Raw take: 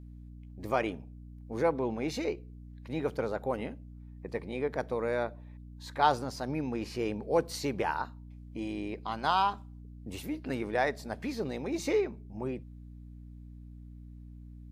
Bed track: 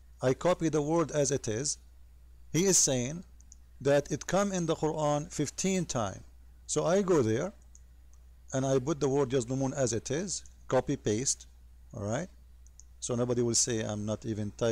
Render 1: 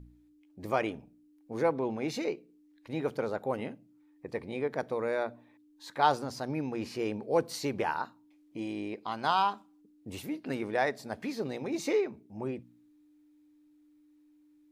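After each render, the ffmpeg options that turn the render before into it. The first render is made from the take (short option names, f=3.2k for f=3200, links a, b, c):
-af "bandreject=f=60:t=h:w=4,bandreject=f=120:t=h:w=4,bandreject=f=180:t=h:w=4,bandreject=f=240:t=h:w=4"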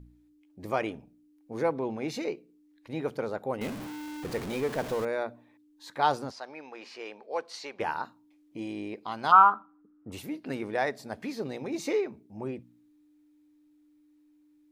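-filter_complex "[0:a]asettb=1/sr,asplit=3[a][b][c];[a]atrim=end=3.614[d];[b]atrim=start=3.61:end=5.05,asetpts=PTS-STARTPTS,afade=t=in:d=0.004:c=qsin,afade=t=out:st=1.436:d=0.004:c=qsin,aeval=exprs='val(0)+0.5*0.0211*sgn(val(0))':c=same[e];[c]atrim=start=5.046[f];[d][e]acrossfade=d=0.004:c1=hsin:c2=qsin[g];[g][f]acrossfade=d=0.004:c1=qsin:c2=hsin,asplit=3[h][i][j];[h]afade=t=out:st=6.3:d=0.02[k];[i]highpass=690,lowpass=5.2k,afade=t=in:st=6.3:d=0.02,afade=t=out:st=7.79:d=0.02[l];[j]afade=t=in:st=7.79:d=0.02[m];[k][l][m]amix=inputs=3:normalize=0,asplit=3[n][o][p];[n]afade=t=out:st=9.31:d=0.02[q];[o]lowpass=f=1.3k:t=q:w=10,afade=t=in:st=9.31:d=0.02,afade=t=out:st=10.11:d=0.02[r];[p]afade=t=in:st=10.11:d=0.02[s];[q][r][s]amix=inputs=3:normalize=0"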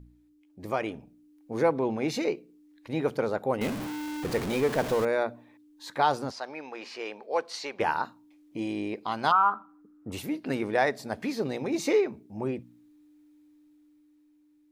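-af "alimiter=limit=-16.5dB:level=0:latency=1:release=254,dynaudnorm=f=120:g=17:m=4.5dB"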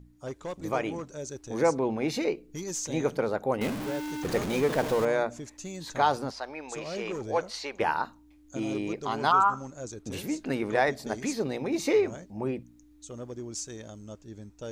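-filter_complex "[1:a]volume=-10dB[a];[0:a][a]amix=inputs=2:normalize=0"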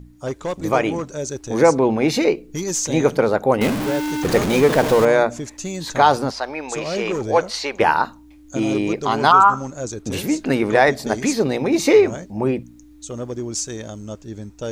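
-af "volume=11dB,alimiter=limit=-2dB:level=0:latency=1"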